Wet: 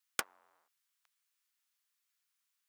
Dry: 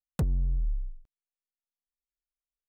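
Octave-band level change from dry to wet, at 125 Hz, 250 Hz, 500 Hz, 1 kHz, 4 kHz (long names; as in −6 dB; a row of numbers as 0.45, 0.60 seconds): −37.5 dB, −22.0 dB, −8.0 dB, +5.5 dB, can't be measured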